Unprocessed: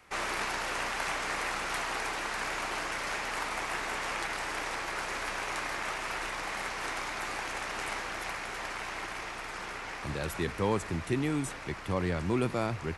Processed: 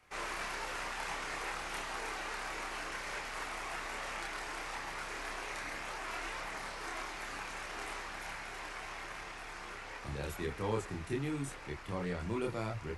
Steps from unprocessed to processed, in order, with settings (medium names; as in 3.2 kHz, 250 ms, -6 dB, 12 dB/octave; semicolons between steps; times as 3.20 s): chorus voices 4, 0.59 Hz, delay 28 ms, depth 1.5 ms; trim -3.5 dB